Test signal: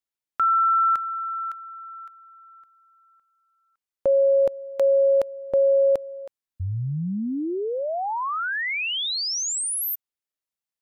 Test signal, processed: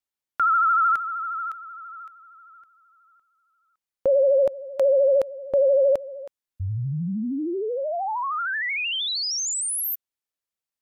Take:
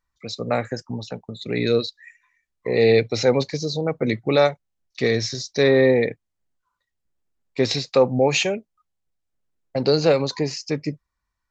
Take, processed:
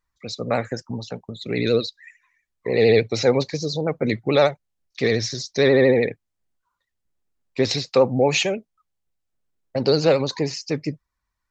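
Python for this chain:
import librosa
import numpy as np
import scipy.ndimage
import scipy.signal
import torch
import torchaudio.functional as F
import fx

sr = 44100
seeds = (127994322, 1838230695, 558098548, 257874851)

y = fx.vibrato(x, sr, rate_hz=13.0, depth_cents=73.0)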